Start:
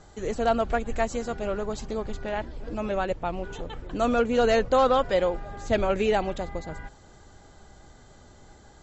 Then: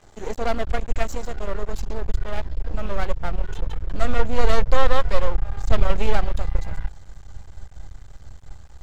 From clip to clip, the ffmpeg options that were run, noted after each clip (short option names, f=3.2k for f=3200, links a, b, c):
-af "aeval=exprs='max(val(0),0)':c=same,asubboost=boost=7.5:cutoff=100,volume=3.5dB"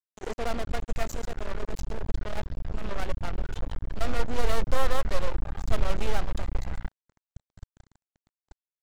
-af "acrusher=bits=3:mix=0:aa=0.5,volume=-7.5dB"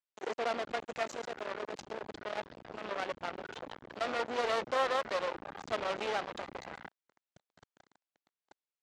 -af "highpass=370,lowpass=4.9k"